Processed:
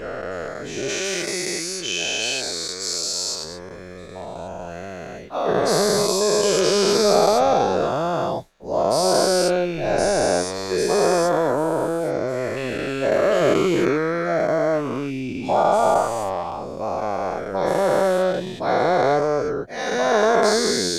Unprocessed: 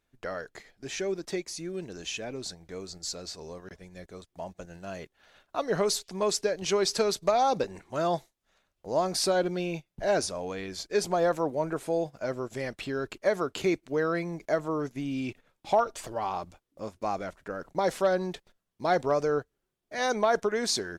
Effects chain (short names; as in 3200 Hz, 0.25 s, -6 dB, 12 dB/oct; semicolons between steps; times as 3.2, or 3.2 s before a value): spectral dilation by 0.48 s; tilt shelf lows +3.5 dB, about 670 Hz, from 0.88 s lows -4 dB, from 3.43 s lows +3 dB